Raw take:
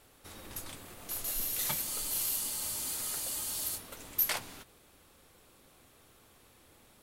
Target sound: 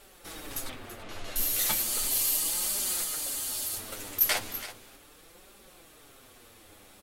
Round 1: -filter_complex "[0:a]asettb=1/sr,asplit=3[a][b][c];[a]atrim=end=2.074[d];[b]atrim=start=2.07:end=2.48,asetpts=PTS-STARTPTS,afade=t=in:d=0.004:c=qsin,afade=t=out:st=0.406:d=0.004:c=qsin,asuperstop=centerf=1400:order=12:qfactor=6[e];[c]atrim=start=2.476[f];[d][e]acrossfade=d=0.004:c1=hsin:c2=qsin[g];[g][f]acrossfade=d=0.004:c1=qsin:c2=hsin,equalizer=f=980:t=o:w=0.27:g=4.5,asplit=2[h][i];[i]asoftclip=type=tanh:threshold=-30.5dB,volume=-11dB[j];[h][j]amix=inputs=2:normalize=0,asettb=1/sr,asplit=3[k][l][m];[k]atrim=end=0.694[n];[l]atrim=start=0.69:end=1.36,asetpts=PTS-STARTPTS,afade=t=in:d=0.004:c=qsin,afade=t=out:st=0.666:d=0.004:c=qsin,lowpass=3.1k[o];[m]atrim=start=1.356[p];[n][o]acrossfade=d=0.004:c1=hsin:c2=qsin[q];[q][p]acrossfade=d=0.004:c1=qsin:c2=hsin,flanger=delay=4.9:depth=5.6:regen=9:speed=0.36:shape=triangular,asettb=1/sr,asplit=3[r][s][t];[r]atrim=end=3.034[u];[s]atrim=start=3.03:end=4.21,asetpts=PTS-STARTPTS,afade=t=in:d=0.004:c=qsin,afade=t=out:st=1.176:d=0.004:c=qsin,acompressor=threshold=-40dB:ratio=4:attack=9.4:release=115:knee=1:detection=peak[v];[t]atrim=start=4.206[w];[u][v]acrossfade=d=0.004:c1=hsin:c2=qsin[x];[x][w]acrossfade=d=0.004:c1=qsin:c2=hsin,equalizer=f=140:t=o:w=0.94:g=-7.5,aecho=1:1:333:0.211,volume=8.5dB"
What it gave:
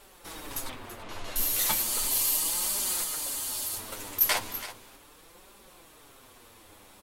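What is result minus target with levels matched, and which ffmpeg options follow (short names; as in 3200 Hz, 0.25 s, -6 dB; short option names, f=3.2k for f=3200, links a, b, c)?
soft clip: distortion -6 dB; 1000 Hz band +3.0 dB
-filter_complex "[0:a]asettb=1/sr,asplit=3[a][b][c];[a]atrim=end=2.074[d];[b]atrim=start=2.07:end=2.48,asetpts=PTS-STARTPTS,afade=t=in:d=0.004:c=qsin,afade=t=out:st=0.406:d=0.004:c=qsin,asuperstop=centerf=1400:order=12:qfactor=6[e];[c]atrim=start=2.476[f];[d][e]acrossfade=d=0.004:c1=hsin:c2=qsin[g];[g][f]acrossfade=d=0.004:c1=qsin:c2=hsin,equalizer=f=980:t=o:w=0.27:g=-4,asplit=2[h][i];[i]asoftclip=type=tanh:threshold=-39dB,volume=-11dB[j];[h][j]amix=inputs=2:normalize=0,asettb=1/sr,asplit=3[k][l][m];[k]atrim=end=0.694[n];[l]atrim=start=0.69:end=1.36,asetpts=PTS-STARTPTS,afade=t=in:d=0.004:c=qsin,afade=t=out:st=0.666:d=0.004:c=qsin,lowpass=3.1k[o];[m]atrim=start=1.356[p];[n][o]acrossfade=d=0.004:c1=hsin:c2=qsin[q];[q][p]acrossfade=d=0.004:c1=qsin:c2=hsin,flanger=delay=4.9:depth=5.6:regen=9:speed=0.36:shape=triangular,asettb=1/sr,asplit=3[r][s][t];[r]atrim=end=3.034[u];[s]atrim=start=3.03:end=4.21,asetpts=PTS-STARTPTS,afade=t=in:d=0.004:c=qsin,afade=t=out:st=1.176:d=0.004:c=qsin,acompressor=threshold=-40dB:ratio=4:attack=9.4:release=115:knee=1:detection=peak[v];[t]atrim=start=4.206[w];[u][v]acrossfade=d=0.004:c1=hsin:c2=qsin[x];[x][w]acrossfade=d=0.004:c1=qsin:c2=hsin,equalizer=f=140:t=o:w=0.94:g=-7.5,aecho=1:1:333:0.211,volume=8.5dB"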